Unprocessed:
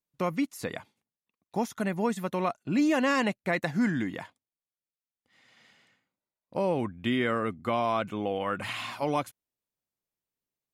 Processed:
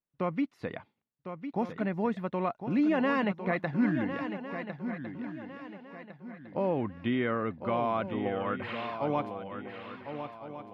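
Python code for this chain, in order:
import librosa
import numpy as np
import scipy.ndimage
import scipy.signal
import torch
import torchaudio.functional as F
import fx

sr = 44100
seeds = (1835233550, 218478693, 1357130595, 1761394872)

p1 = fx.air_absorb(x, sr, metres=340.0)
p2 = p1 + fx.echo_swing(p1, sr, ms=1405, ratio=3, feedback_pct=35, wet_db=-9.0, dry=0)
y = p2 * librosa.db_to_amplitude(-1.0)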